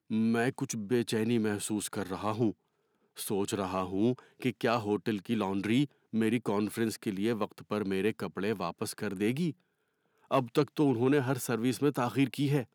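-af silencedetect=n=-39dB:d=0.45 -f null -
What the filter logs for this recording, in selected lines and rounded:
silence_start: 2.51
silence_end: 3.18 | silence_duration: 0.67
silence_start: 9.51
silence_end: 10.31 | silence_duration: 0.80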